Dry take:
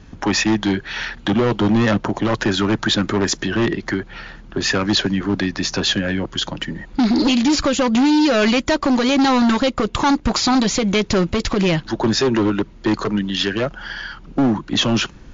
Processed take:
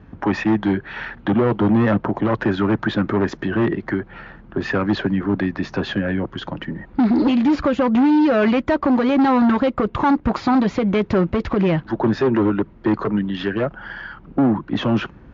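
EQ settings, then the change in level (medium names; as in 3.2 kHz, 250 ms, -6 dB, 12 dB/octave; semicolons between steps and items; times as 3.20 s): high-pass 50 Hz; low-pass 1.7 kHz 12 dB/octave; 0.0 dB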